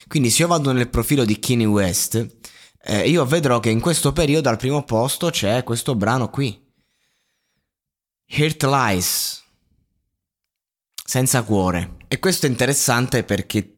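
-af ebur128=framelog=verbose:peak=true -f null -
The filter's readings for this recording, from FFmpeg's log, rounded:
Integrated loudness:
  I:         -19.0 LUFS
  Threshold: -29.8 LUFS
Loudness range:
  LRA:         4.6 LU
  Threshold: -40.8 LUFS
  LRA low:   -23.3 LUFS
  LRA high:  -18.8 LUFS
True peak:
  Peak:       -3.2 dBFS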